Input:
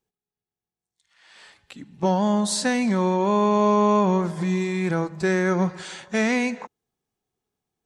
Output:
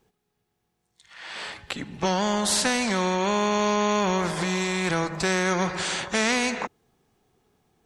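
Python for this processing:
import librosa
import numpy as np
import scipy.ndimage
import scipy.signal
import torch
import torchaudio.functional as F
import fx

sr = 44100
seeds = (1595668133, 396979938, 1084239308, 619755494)

y = fx.high_shelf(x, sr, hz=4200.0, db=-8.5)
y = fx.spectral_comp(y, sr, ratio=2.0)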